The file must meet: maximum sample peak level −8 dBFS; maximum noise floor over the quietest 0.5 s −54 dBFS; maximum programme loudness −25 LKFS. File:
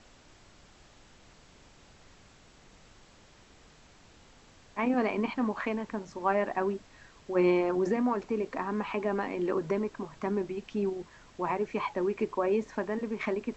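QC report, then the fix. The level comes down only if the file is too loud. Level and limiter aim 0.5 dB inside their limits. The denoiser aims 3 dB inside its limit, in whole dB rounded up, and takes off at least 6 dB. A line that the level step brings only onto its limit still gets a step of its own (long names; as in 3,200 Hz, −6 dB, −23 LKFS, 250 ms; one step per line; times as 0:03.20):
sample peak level −14.5 dBFS: in spec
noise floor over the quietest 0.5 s −57 dBFS: in spec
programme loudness −31.0 LKFS: in spec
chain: no processing needed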